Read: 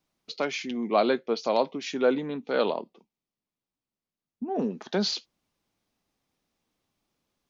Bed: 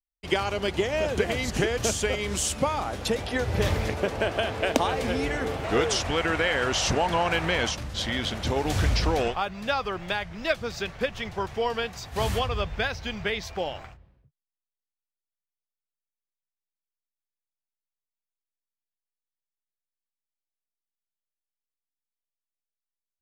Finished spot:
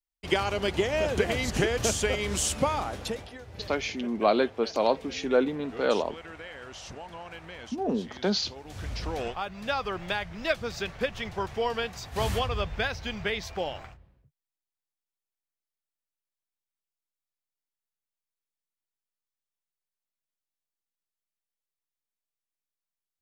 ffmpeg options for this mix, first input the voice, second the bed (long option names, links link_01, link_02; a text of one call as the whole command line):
ffmpeg -i stem1.wav -i stem2.wav -filter_complex "[0:a]adelay=3300,volume=0dB[link_01];[1:a]volume=16dB,afade=type=out:start_time=2.74:duration=0.63:silence=0.133352,afade=type=in:start_time=8.68:duration=1.24:silence=0.149624[link_02];[link_01][link_02]amix=inputs=2:normalize=0" out.wav